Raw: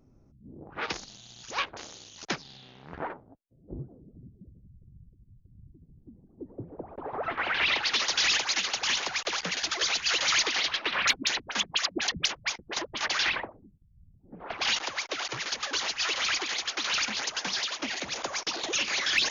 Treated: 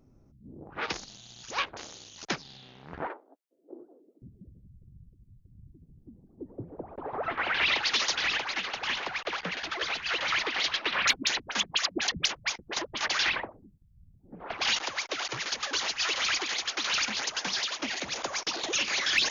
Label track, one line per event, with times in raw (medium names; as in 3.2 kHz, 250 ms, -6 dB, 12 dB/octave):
3.070000	4.220000	steep high-pass 310 Hz
8.150000	10.600000	low-pass 2.8 kHz